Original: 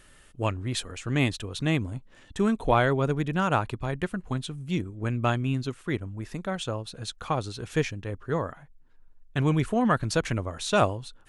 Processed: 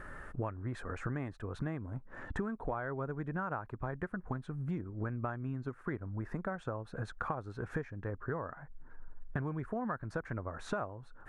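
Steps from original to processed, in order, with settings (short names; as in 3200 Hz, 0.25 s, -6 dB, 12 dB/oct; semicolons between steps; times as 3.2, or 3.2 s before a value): EQ curve 300 Hz 0 dB, 1600 Hz +5 dB, 3000 Hz -20 dB; compressor 12:1, threshold -43 dBFS, peak gain reduction 29 dB; gain +8.5 dB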